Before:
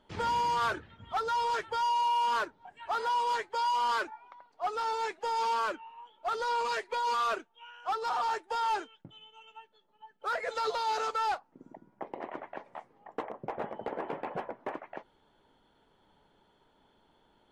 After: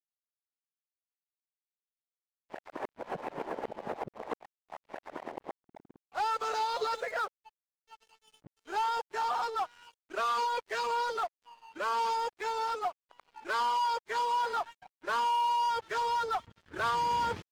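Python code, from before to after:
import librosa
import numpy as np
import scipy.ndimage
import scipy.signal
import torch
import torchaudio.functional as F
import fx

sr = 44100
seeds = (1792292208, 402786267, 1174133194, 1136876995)

y = x[::-1].copy()
y = np.sign(y) * np.maximum(np.abs(y) - 10.0 ** (-52.5 / 20.0), 0.0)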